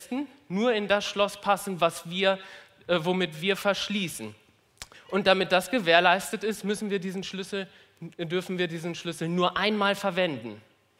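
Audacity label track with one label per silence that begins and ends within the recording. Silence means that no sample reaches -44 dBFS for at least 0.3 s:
4.350000	4.780000	silence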